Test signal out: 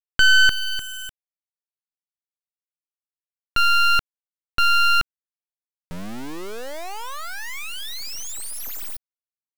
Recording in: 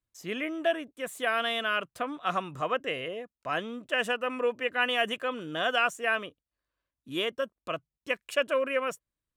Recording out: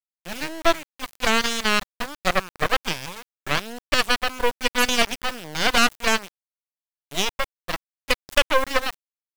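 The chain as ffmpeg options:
ffmpeg -i in.wav -af "aeval=exprs='0.224*(cos(1*acos(clip(val(0)/0.224,-1,1)))-cos(1*PI/2))+0.00891*(cos(3*acos(clip(val(0)/0.224,-1,1)))-cos(3*PI/2))+0.0447*(cos(6*acos(clip(val(0)/0.224,-1,1)))-cos(6*PI/2))+0.0355*(cos(7*acos(clip(val(0)/0.224,-1,1)))-cos(7*PI/2))+0.00224*(cos(8*acos(clip(val(0)/0.224,-1,1)))-cos(8*PI/2))':channel_layout=same,acrusher=bits=4:dc=4:mix=0:aa=0.000001,volume=8dB" out.wav

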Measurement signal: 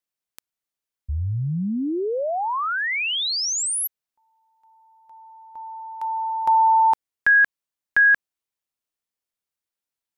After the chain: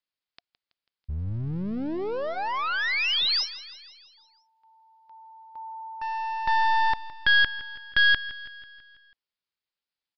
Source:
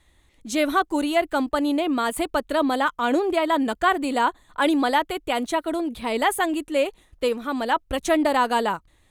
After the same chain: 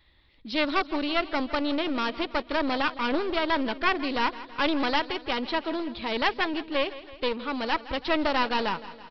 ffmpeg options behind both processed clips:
ffmpeg -i in.wav -af "aresample=11025,aeval=exprs='clip(val(0),-1,0.0355)':channel_layout=same,aresample=44100,highshelf=frequency=2000:gain=7.5,bandreject=frequency=710:width=14,aecho=1:1:164|328|492|656|820|984:0.158|0.0919|0.0533|0.0309|0.0179|0.0104,volume=-3.5dB" out.wav

